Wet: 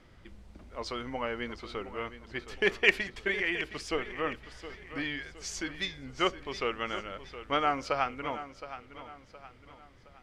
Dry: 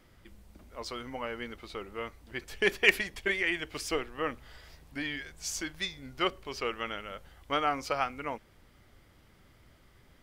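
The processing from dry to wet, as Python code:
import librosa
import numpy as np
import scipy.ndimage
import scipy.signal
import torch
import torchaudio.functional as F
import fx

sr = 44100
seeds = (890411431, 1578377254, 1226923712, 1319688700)

p1 = fx.rider(x, sr, range_db=5, speed_s=2.0)
p2 = x + F.gain(torch.from_numpy(p1), 0.5).numpy()
p3 = fx.air_absorb(p2, sr, metres=68.0)
p4 = fx.echo_feedback(p3, sr, ms=717, feedback_pct=40, wet_db=-13.0)
y = F.gain(torch.from_numpy(p4), -6.0).numpy()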